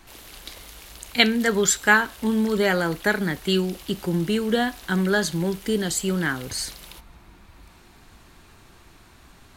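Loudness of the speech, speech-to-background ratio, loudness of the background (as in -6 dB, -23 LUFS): -22.5 LUFS, 20.0 dB, -42.5 LUFS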